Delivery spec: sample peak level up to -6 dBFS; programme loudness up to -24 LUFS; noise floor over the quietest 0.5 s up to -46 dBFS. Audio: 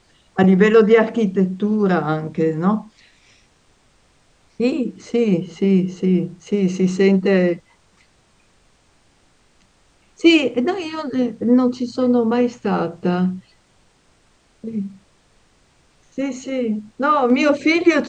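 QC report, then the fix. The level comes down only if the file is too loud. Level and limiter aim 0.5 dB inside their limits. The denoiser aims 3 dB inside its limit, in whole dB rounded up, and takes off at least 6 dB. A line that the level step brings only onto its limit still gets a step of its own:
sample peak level -2.5 dBFS: fail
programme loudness -18.5 LUFS: fail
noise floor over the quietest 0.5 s -57 dBFS: OK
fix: gain -6 dB

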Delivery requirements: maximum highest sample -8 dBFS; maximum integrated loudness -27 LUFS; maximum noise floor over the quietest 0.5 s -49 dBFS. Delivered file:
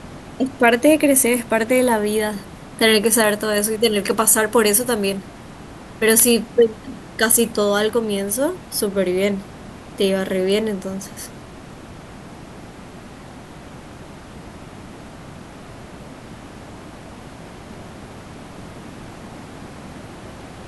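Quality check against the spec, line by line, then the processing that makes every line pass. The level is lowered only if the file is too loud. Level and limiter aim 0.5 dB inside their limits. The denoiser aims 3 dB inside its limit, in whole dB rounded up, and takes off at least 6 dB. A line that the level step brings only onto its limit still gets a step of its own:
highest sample -2.5 dBFS: fail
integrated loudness -17.5 LUFS: fail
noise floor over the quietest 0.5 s -38 dBFS: fail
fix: denoiser 6 dB, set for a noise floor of -38 dBFS; gain -10 dB

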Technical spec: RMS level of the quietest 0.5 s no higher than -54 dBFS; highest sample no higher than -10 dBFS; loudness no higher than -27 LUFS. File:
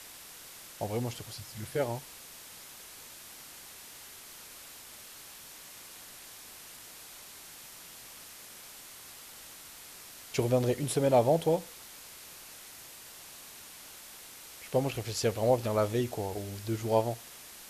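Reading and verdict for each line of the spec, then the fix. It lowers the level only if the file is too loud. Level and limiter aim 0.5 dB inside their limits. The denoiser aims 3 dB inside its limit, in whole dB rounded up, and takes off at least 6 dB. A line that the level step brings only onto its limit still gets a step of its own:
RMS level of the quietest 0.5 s -49 dBFS: fail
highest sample -12.5 dBFS: OK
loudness -30.5 LUFS: OK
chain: denoiser 8 dB, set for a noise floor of -49 dBFS

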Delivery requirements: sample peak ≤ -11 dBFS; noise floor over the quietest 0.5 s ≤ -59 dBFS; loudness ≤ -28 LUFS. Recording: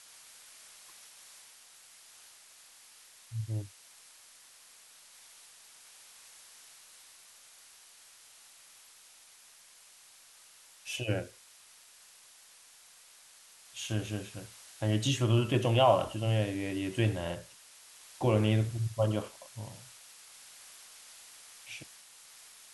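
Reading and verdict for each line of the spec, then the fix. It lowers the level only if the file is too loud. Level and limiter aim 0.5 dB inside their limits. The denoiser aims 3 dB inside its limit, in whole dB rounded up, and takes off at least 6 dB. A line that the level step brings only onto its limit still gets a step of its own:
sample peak -12.5 dBFS: OK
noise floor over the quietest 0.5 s -58 dBFS: fail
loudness -31.5 LUFS: OK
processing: denoiser 6 dB, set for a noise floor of -58 dBFS

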